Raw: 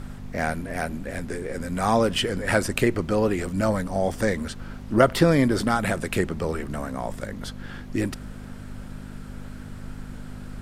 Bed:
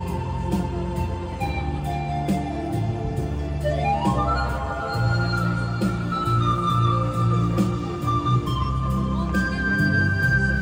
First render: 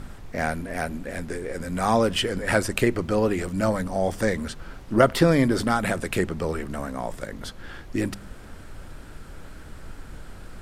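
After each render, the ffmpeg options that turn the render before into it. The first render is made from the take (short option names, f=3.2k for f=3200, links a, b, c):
-af "bandreject=f=50:t=h:w=4,bandreject=f=100:t=h:w=4,bandreject=f=150:t=h:w=4,bandreject=f=200:t=h:w=4,bandreject=f=250:t=h:w=4"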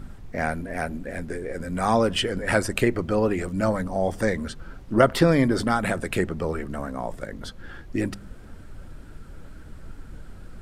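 -af "afftdn=nr=7:nf=-42"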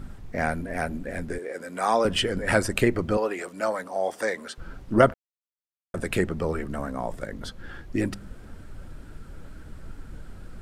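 -filter_complex "[0:a]asettb=1/sr,asplit=3[a][b][c];[a]atrim=end=1.384[d];[b]atrim=start=1.38:end=2.05,asetpts=PTS-STARTPTS,afade=t=in:d=0.004:c=qsin,afade=t=out:st=0.666:d=0.004:c=qsin,highpass=380[e];[c]atrim=start=2.046[f];[d][e]acrossfade=d=0.004:c1=hsin:c2=qsin[g];[g][f]acrossfade=d=0.004:c1=qsin:c2=hsin,asettb=1/sr,asplit=3[h][i][j];[h]atrim=end=3.174[k];[i]atrim=start=3.17:end=4.58,asetpts=PTS-STARTPTS,afade=t=in:d=0.004:c=qsin,afade=t=out:st=1.406:d=0.004:c=qsin,highpass=480[l];[j]atrim=start=4.576[m];[k][l]acrossfade=d=0.004:c1=hsin:c2=qsin[n];[n][m]acrossfade=d=0.004:c1=qsin:c2=hsin,asplit=3[o][p][q];[o]atrim=end=5.14,asetpts=PTS-STARTPTS,afade=t=out:st=5.136:d=0.004:c=hsin[r];[p]atrim=start=5.14:end=5.94,asetpts=PTS-STARTPTS,volume=0[s];[q]atrim=start=5.94,asetpts=PTS-STARTPTS,afade=t=in:d=0.004:c=hsin[t];[r][s][t]concat=n=3:v=0:a=1"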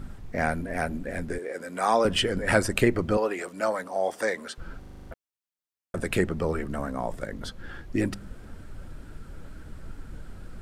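-filter_complex "[0:a]asplit=9[a][b][c][d][e][f][g][h][i];[a]atrim=end=4.832[j];[b]atrim=start=4.788:end=4.832[k];[c]atrim=start=4.788:end=4.832[l];[d]atrim=start=4.788:end=4.832[m];[e]atrim=start=4.788:end=4.832[n];[f]atrim=start=4.788:end=4.832[o];[g]atrim=start=4.788:end=4.832[p];[h]atrim=start=4.788:end=4.832[q];[i]atrim=start=5.108[r];[j][k]acrossfade=d=0.004:c1=hsin:c2=hsin[s];[s][l]acrossfade=d=0.004:c1=hsin:c2=hsin[t];[t][m]acrossfade=d=0.004:c1=hsin:c2=hsin[u];[u][n]acrossfade=d=0.004:c1=hsin:c2=hsin[v];[v][o]acrossfade=d=0.004:c1=hsin:c2=hsin[w];[w][p]acrossfade=d=0.004:c1=hsin:c2=hsin[x];[x][q]acrossfade=d=0.004:c1=hsin:c2=hsin[y];[y][r]acrossfade=d=0.004:c1=hsin:c2=hsin"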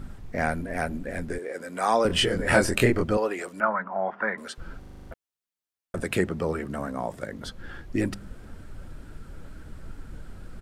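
-filter_complex "[0:a]asplit=3[a][b][c];[a]afade=t=out:st=2.09:d=0.02[d];[b]asplit=2[e][f];[f]adelay=24,volume=-2dB[g];[e][g]amix=inputs=2:normalize=0,afade=t=in:st=2.09:d=0.02,afade=t=out:st=3.03:d=0.02[h];[c]afade=t=in:st=3.03:d=0.02[i];[d][h][i]amix=inputs=3:normalize=0,asettb=1/sr,asplit=3[j][k][l];[j]atrim=end=3.604[m];[k]atrim=start=3.6:end=4.38,asetpts=PTS-STARTPTS,afade=t=in:d=0.004:c=qsin,afade=t=out:st=0.776:d=0.004:c=qsin,highpass=140,equalizer=f=200:t=q:w=4:g=9,equalizer=f=290:t=q:w=4:g=-9,equalizer=f=490:t=q:w=4:g=-9,equalizer=f=1k:t=q:w=4:g=7,equalizer=f=1.4k:t=q:w=4:g=9,lowpass=f=2.2k:w=0.5412,lowpass=f=2.2k:w=1.3066[n];[l]atrim=start=4.376[o];[m][n]acrossfade=d=0.004:c1=hsin:c2=qsin[p];[p][o]acrossfade=d=0.004:c1=qsin:c2=hsin,asettb=1/sr,asplit=3[q][r][s];[q]atrim=end=6.034[t];[r]atrim=start=6.03:end=7.46,asetpts=PTS-STARTPTS,afade=t=in:d=0.004:c=qsin,afade=t=out:st=1.426:d=0.004:c=qsin,highpass=81[u];[s]atrim=start=7.456[v];[t][u]acrossfade=d=0.004:c1=hsin:c2=qsin[w];[w][v]acrossfade=d=0.004:c1=qsin:c2=hsin"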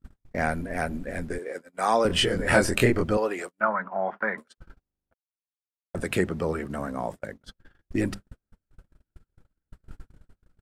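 -af "agate=range=-44dB:threshold=-34dB:ratio=16:detection=peak"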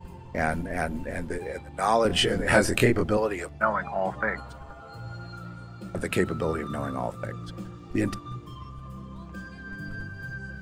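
-filter_complex "[1:a]volume=-17.5dB[a];[0:a][a]amix=inputs=2:normalize=0"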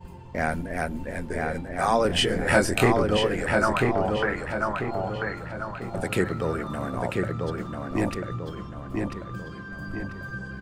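-filter_complex "[0:a]asplit=2[a][b];[b]adelay=992,lowpass=f=3.7k:p=1,volume=-3dB,asplit=2[c][d];[d]adelay=992,lowpass=f=3.7k:p=1,volume=0.45,asplit=2[e][f];[f]adelay=992,lowpass=f=3.7k:p=1,volume=0.45,asplit=2[g][h];[h]adelay=992,lowpass=f=3.7k:p=1,volume=0.45,asplit=2[i][j];[j]adelay=992,lowpass=f=3.7k:p=1,volume=0.45,asplit=2[k][l];[l]adelay=992,lowpass=f=3.7k:p=1,volume=0.45[m];[a][c][e][g][i][k][m]amix=inputs=7:normalize=0"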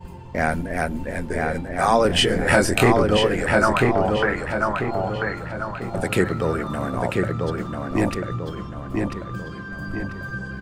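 -af "volume=4.5dB,alimiter=limit=-3dB:level=0:latency=1"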